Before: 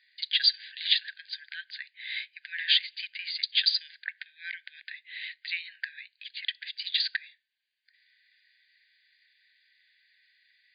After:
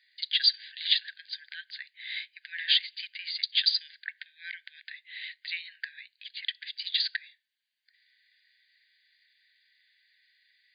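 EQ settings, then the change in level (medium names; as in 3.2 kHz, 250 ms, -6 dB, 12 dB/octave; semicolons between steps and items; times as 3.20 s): high-pass 1.5 kHz; peaking EQ 2.5 kHz -4 dB 0.21 oct; 0.0 dB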